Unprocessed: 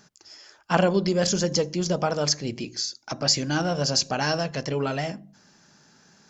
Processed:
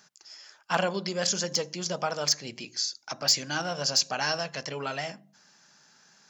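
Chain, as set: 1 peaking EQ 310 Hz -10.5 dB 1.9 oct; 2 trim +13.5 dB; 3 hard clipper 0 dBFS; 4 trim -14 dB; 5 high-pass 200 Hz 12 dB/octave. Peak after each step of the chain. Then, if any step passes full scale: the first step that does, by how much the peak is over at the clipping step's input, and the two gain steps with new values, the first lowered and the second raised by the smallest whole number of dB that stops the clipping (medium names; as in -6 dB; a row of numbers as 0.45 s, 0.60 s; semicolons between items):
-8.0 dBFS, +5.5 dBFS, 0.0 dBFS, -14.0 dBFS, -11.5 dBFS; step 2, 5.5 dB; step 2 +7.5 dB, step 4 -8 dB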